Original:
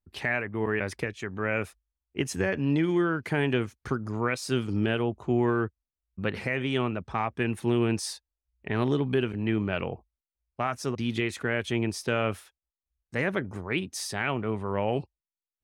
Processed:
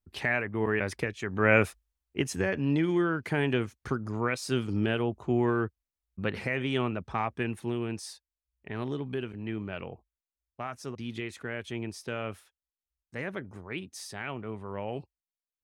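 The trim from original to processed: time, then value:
1.22 s 0 dB
1.53 s +7.5 dB
2.32 s -1.5 dB
7.28 s -1.5 dB
7.81 s -8 dB

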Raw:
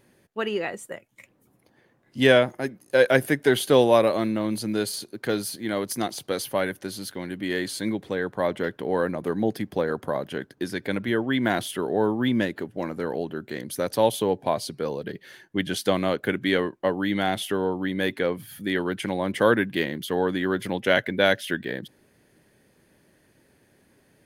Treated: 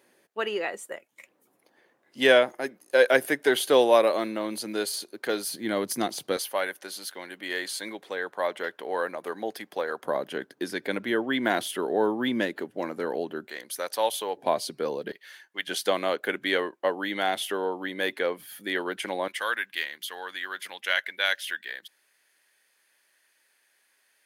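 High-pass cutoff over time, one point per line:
380 Hz
from 5.51 s 180 Hz
from 6.37 s 600 Hz
from 10.05 s 290 Hz
from 13.47 s 720 Hz
from 14.37 s 270 Hz
from 15.12 s 1 kHz
from 15.68 s 440 Hz
from 19.28 s 1.4 kHz

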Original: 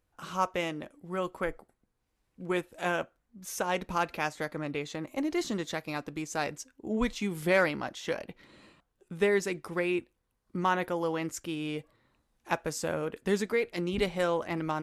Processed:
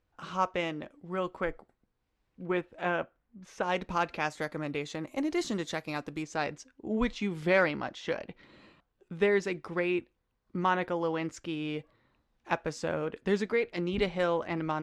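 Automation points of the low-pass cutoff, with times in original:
4.9 kHz
from 2.43 s 2.8 kHz
from 3.63 s 5.9 kHz
from 4.30 s 9.9 kHz
from 6.23 s 4.6 kHz

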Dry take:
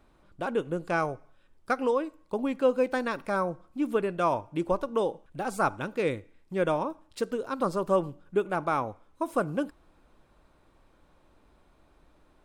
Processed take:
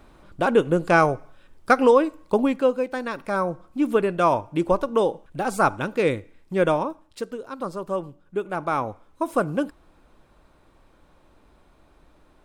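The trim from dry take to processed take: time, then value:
2.36 s +10.5 dB
2.87 s -1 dB
3.65 s +6.5 dB
6.67 s +6.5 dB
7.38 s -2.5 dB
8.22 s -2.5 dB
8.90 s +5 dB

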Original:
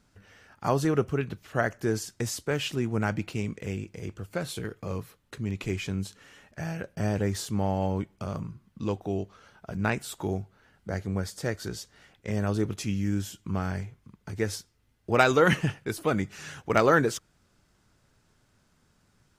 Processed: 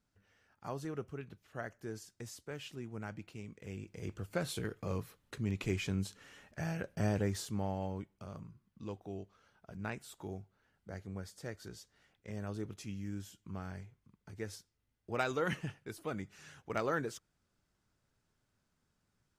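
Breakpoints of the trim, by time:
3.50 s -16 dB
4.12 s -4 dB
7.00 s -4 dB
8.16 s -13.5 dB

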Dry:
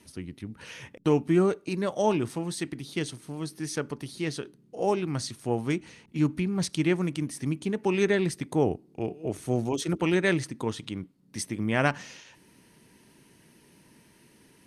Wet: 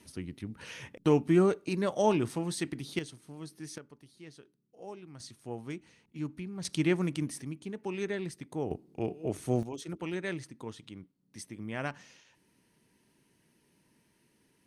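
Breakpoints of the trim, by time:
-1.5 dB
from 2.99 s -9.5 dB
from 3.78 s -19 dB
from 5.20 s -12 dB
from 6.65 s -2.5 dB
from 7.42 s -10.5 dB
from 8.71 s -2 dB
from 9.63 s -11.5 dB

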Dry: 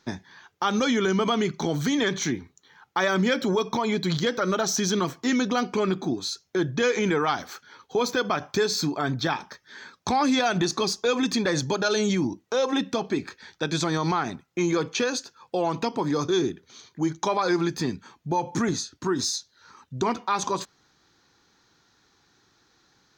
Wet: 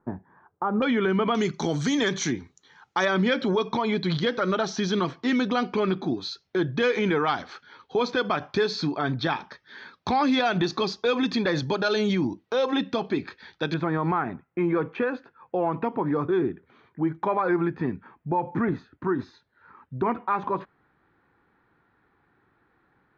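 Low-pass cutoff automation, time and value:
low-pass 24 dB/octave
1.2 kHz
from 0.82 s 2.9 kHz
from 1.35 s 7.7 kHz
from 3.05 s 4.3 kHz
from 13.74 s 2.1 kHz

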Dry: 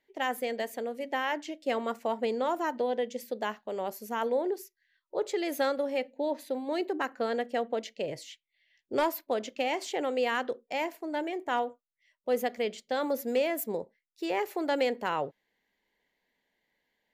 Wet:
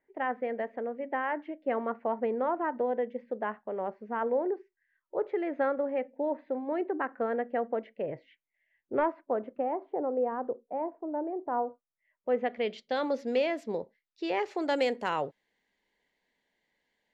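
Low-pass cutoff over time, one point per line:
low-pass 24 dB/octave
9.04 s 1.9 kHz
9.91 s 1 kHz
11.44 s 1 kHz
12.44 s 2.5 kHz
12.81 s 5.1 kHz
14.38 s 5.1 kHz
14.81 s 9.8 kHz

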